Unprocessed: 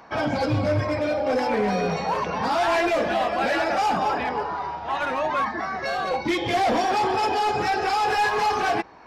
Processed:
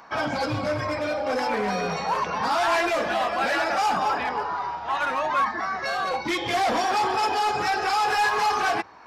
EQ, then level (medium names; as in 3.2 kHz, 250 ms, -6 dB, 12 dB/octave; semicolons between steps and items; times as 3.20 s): peaking EQ 1.2 kHz +6.5 dB 1.2 oct; treble shelf 3.1 kHz +9 dB; hum notches 50/100 Hz; -5.0 dB